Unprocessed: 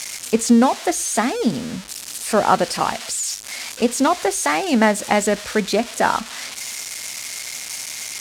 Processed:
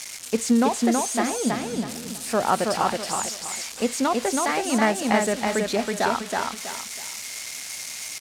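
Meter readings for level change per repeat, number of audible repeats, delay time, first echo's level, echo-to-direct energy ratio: -10.0 dB, 3, 324 ms, -3.0 dB, -2.5 dB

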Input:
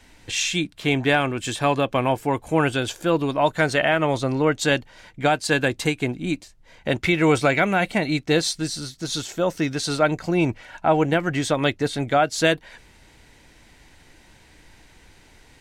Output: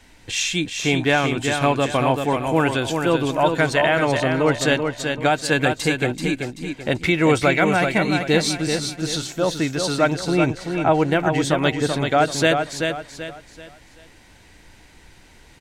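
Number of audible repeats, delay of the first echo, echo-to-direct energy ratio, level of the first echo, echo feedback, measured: 4, 384 ms, -5.0 dB, -5.5 dB, 35%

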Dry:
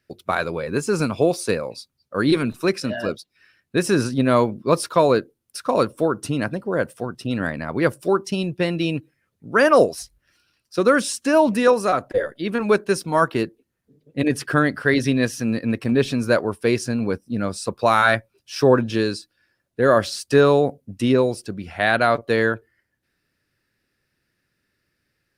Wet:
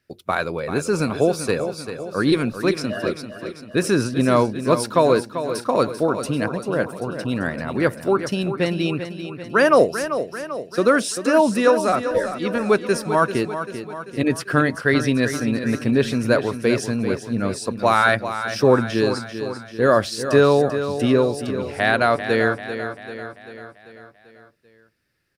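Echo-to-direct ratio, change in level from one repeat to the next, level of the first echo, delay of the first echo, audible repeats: -8.5 dB, -5.0 dB, -10.0 dB, 391 ms, 5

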